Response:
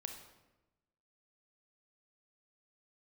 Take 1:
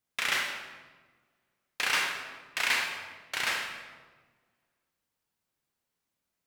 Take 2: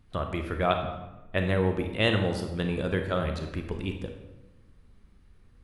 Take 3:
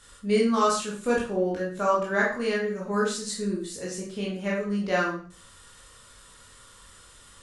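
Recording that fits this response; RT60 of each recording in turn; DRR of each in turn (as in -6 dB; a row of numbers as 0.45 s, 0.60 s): 2; 1.4 s, 1.0 s, 0.45 s; 1.0 dB, 4.5 dB, -4.5 dB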